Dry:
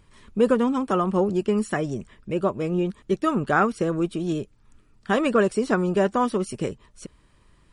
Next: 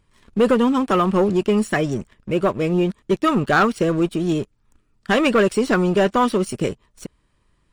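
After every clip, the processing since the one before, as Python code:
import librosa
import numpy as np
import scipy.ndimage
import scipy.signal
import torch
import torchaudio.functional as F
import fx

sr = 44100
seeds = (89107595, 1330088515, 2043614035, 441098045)

y = fx.dynamic_eq(x, sr, hz=2900.0, q=0.97, threshold_db=-41.0, ratio=4.0, max_db=6)
y = fx.leveller(y, sr, passes=2)
y = F.gain(torch.from_numpy(y), -2.0).numpy()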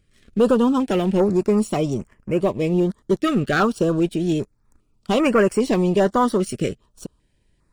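y = fx.filter_held_notch(x, sr, hz=2.5, low_hz=960.0, high_hz=3700.0)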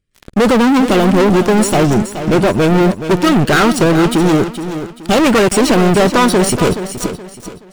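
y = fx.leveller(x, sr, passes=5)
y = fx.echo_feedback(y, sr, ms=424, feedback_pct=33, wet_db=-10.5)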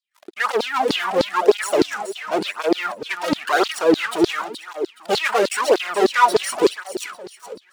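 y = fx.filter_lfo_highpass(x, sr, shape='saw_down', hz=3.3, low_hz=320.0, high_hz=4600.0, q=6.6)
y = fx.flanger_cancel(y, sr, hz=0.95, depth_ms=4.0)
y = F.gain(torch.from_numpy(y), -7.0).numpy()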